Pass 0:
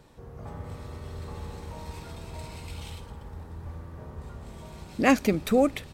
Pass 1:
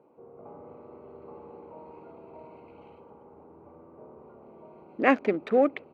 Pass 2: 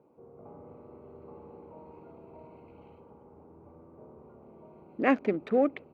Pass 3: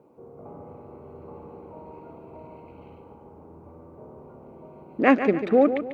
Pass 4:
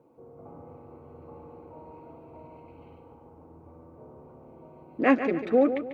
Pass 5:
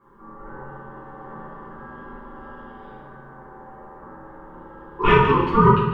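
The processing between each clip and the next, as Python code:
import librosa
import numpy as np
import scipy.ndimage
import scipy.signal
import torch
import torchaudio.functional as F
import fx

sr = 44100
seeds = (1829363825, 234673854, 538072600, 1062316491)

y1 = fx.wiener(x, sr, points=25)
y1 = scipy.signal.sosfilt(scipy.signal.cheby1(2, 1.0, [340.0, 2100.0], 'bandpass', fs=sr, output='sos'), y1)
y1 = y1 * 10.0 ** (1.5 / 20.0)
y2 = fx.low_shelf(y1, sr, hz=220.0, db=10.0)
y2 = y2 * 10.0 ** (-5.0 / 20.0)
y3 = fx.echo_feedback(y2, sr, ms=144, feedback_pct=38, wet_db=-10)
y3 = y3 * 10.0 ** (6.5 / 20.0)
y4 = fx.notch_comb(y3, sr, f0_hz=200.0)
y4 = y4 * 10.0 ** (-2.5 / 20.0)
y5 = y4 * np.sin(2.0 * np.pi * 690.0 * np.arange(len(y4)) / sr)
y5 = fx.room_shoebox(y5, sr, seeds[0], volume_m3=160.0, walls='mixed', distance_m=3.3)
y5 = y5 * 10.0 ** (-1.0 / 20.0)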